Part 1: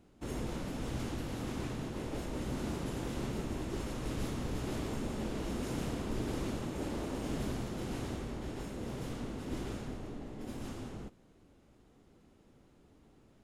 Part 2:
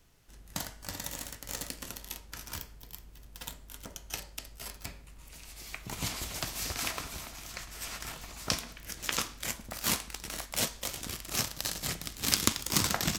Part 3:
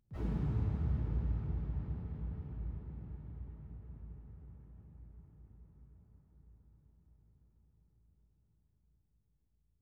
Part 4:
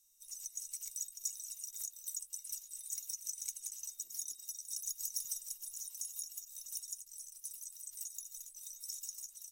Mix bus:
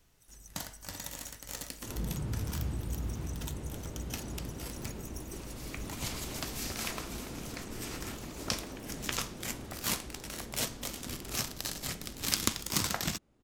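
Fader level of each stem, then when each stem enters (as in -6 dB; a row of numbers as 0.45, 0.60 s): -6.5, -3.0, -1.5, -10.5 dB; 1.60, 0.00, 1.75, 0.00 s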